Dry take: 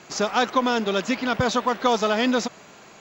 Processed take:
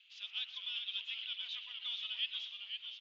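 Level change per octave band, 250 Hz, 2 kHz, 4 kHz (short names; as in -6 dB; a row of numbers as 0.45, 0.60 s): under -40 dB, -19.0 dB, -6.0 dB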